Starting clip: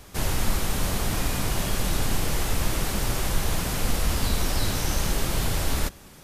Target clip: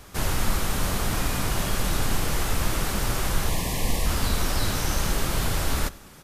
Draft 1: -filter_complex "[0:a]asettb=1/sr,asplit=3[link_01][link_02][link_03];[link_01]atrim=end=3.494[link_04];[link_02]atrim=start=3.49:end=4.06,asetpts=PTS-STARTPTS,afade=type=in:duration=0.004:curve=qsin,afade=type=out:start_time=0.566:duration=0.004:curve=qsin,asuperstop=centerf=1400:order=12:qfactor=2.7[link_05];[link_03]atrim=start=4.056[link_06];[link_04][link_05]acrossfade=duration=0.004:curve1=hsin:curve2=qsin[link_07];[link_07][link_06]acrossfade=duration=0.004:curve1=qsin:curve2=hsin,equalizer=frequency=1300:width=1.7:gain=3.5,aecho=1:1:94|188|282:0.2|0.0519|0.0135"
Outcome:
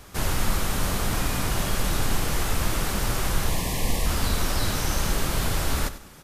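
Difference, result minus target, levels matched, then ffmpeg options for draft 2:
echo-to-direct +8.5 dB
-filter_complex "[0:a]asettb=1/sr,asplit=3[link_01][link_02][link_03];[link_01]atrim=end=3.494[link_04];[link_02]atrim=start=3.49:end=4.06,asetpts=PTS-STARTPTS,afade=type=in:duration=0.004:curve=qsin,afade=type=out:start_time=0.566:duration=0.004:curve=qsin,asuperstop=centerf=1400:order=12:qfactor=2.7[link_05];[link_03]atrim=start=4.056[link_06];[link_04][link_05]acrossfade=duration=0.004:curve1=hsin:curve2=qsin[link_07];[link_07][link_06]acrossfade=duration=0.004:curve1=qsin:curve2=hsin,equalizer=frequency=1300:width=1.7:gain=3.5,aecho=1:1:94|188:0.075|0.0195"

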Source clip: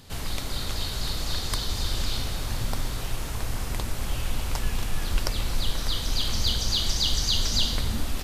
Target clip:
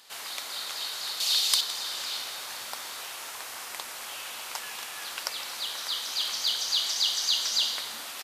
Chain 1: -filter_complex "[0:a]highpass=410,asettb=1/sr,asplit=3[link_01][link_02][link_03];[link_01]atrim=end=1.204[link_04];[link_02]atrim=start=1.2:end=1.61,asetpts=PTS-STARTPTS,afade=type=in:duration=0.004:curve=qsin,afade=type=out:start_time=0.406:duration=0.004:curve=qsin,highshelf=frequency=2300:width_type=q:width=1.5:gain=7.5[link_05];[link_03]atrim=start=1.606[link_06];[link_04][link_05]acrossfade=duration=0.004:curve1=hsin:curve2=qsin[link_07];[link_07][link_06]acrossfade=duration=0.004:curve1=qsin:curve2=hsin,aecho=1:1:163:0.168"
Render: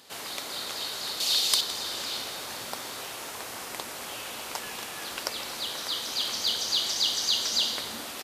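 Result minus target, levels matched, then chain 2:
500 Hz band +7.0 dB
-filter_complex "[0:a]highpass=860,asettb=1/sr,asplit=3[link_01][link_02][link_03];[link_01]atrim=end=1.204[link_04];[link_02]atrim=start=1.2:end=1.61,asetpts=PTS-STARTPTS,afade=type=in:duration=0.004:curve=qsin,afade=type=out:start_time=0.406:duration=0.004:curve=qsin,highshelf=frequency=2300:width_type=q:width=1.5:gain=7.5[link_05];[link_03]atrim=start=1.606[link_06];[link_04][link_05]acrossfade=duration=0.004:curve1=hsin:curve2=qsin[link_07];[link_07][link_06]acrossfade=duration=0.004:curve1=qsin:curve2=hsin,aecho=1:1:163:0.168"

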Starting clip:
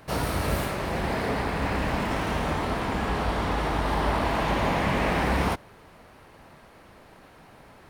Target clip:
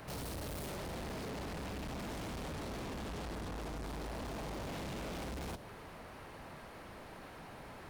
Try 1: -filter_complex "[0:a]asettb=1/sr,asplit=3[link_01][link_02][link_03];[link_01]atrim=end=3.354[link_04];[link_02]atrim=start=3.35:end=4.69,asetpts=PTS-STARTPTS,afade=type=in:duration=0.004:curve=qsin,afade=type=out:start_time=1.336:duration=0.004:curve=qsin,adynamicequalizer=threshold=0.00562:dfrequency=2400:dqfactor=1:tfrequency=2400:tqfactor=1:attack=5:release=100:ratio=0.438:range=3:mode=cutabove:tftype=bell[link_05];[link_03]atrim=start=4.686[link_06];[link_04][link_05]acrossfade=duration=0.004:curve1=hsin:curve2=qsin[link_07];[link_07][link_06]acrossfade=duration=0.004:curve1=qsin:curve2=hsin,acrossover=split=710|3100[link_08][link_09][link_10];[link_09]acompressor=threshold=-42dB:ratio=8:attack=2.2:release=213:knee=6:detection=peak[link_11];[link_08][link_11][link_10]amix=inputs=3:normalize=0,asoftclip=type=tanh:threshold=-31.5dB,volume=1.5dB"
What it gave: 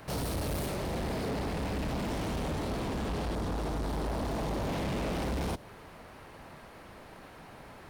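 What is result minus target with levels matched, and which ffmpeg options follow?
soft clipping: distortion −5 dB
-filter_complex "[0:a]asettb=1/sr,asplit=3[link_01][link_02][link_03];[link_01]atrim=end=3.354[link_04];[link_02]atrim=start=3.35:end=4.69,asetpts=PTS-STARTPTS,afade=type=in:duration=0.004:curve=qsin,afade=type=out:start_time=1.336:duration=0.004:curve=qsin,adynamicequalizer=threshold=0.00562:dfrequency=2400:dqfactor=1:tfrequency=2400:tqfactor=1:attack=5:release=100:ratio=0.438:range=3:mode=cutabove:tftype=bell[link_05];[link_03]atrim=start=4.686[link_06];[link_04][link_05]acrossfade=duration=0.004:curve1=hsin:curve2=qsin[link_07];[link_07][link_06]acrossfade=duration=0.004:curve1=qsin:curve2=hsin,acrossover=split=710|3100[link_08][link_09][link_10];[link_09]acompressor=threshold=-42dB:ratio=8:attack=2.2:release=213:knee=6:detection=peak[link_11];[link_08][link_11][link_10]amix=inputs=3:normalize=0,asoftclip=type=tanh:threshold=-42.5dB,volume=1.5dB"

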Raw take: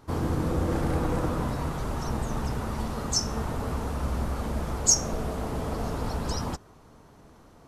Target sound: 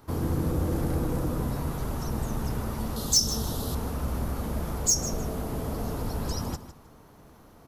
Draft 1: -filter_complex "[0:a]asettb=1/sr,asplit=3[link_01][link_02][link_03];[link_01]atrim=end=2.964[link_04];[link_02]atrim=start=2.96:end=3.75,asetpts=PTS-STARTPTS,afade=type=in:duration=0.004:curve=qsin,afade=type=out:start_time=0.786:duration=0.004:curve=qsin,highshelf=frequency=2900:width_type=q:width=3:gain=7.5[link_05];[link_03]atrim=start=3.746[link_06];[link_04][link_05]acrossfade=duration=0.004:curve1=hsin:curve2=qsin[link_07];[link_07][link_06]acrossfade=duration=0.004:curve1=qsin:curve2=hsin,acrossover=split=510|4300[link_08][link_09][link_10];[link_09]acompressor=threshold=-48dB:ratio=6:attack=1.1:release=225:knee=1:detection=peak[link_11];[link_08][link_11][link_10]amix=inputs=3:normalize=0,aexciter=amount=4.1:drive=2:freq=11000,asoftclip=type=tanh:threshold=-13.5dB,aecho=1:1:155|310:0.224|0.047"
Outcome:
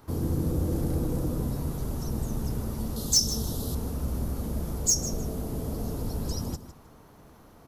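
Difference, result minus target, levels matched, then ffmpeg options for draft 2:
downward compressor: peak gain reduction +9 dB
-filter_complex "[0:a]asettb=1/sr,asplit=3[link_01][link_02][link_03];[link_01]atrim=end=2.964[link_04];[link_02]atrim=start=2.96:end=3.75,asetpts=PTS-STARTPTS,afade=type=in:duration=0.004:curve=qsin,afade=type=out:start_time=0.786:duration=0.004:curve=qsin,highshelf=frequency=2900:width_type=q:width=3:gain=7.5[link_05];[link_03]atrim=start=3.746[link_06];[link_04][link_05]acrossfade=duration=0.004:curve1=hsin:curve2=qsin[link_07];[link_07][link_06]acrossfade=duration=0.004:curve1=qsin:curve2=hsin,acrossover=split=510|4300[link_08][link_09][link_10];[link_09]acompressor=threshold=-37dB:ratio=6:attack=1.1:release=225:knee=1:detection=peak[link_11];[link_08][link_11][link_10]amix=inputs=3:normalize=0,aexciter=amount=4.1:drive=2:freq=11000,asoftclip=type=tanh:threshold=-13.5dB,aecho=1:1:155|310:0.224|0.047"

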